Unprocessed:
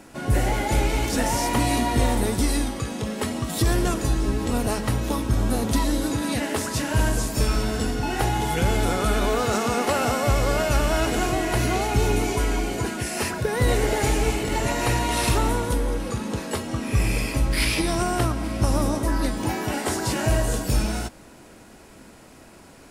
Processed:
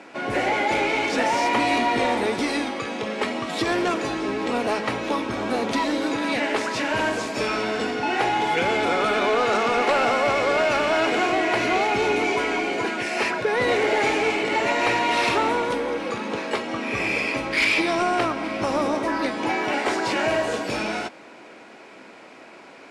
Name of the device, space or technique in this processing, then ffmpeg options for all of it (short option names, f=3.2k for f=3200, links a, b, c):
intercom: -af "highpass=350,lowpass=3.8k,equalizer=f=2.3k:t=o:w=0.24:g=6.5,asoftclip=type=tanh:threshold=-18dB,volume=5.5dB"